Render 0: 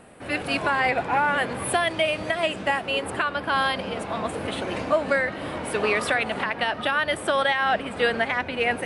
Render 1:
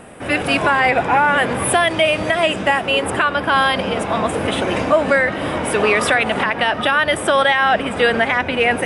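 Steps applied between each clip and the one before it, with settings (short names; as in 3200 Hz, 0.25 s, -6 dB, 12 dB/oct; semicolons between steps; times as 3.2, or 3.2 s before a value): notch 4300 Hz, Q 7.7; in parallel at +0.5 dB: limiter -18.5 dBFS, peak gain reduction 8.5 dB; on the sum: gain +3.5 dB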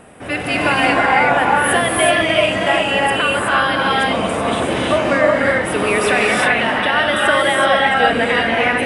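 non-linear reverb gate 0.4 s rising, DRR -3.5 dB; gain -3.5 dB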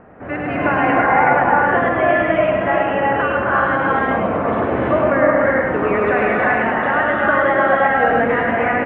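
LPF 1800 Hz 24 dB/oct; on a send: echo 0.104 s -3.5 dB; on the sum: gain -1 dB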